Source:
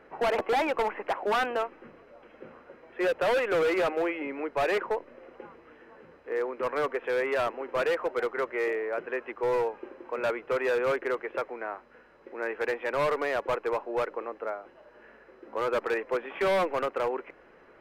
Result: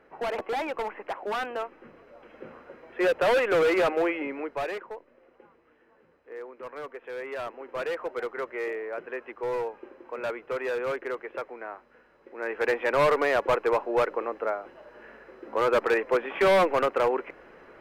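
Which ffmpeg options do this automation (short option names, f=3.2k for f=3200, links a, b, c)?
-af "volume=18dB,afade=t=in:st=1.51:d=0.93:silence=0.446684,afade=t=out:st=4.16:d=0.65:silence=0.223872,afade=t=in:st=7.01:d=1.09:silence=0.446684,afade=t=in:st=12.34:d=0.4:silence=0.398107"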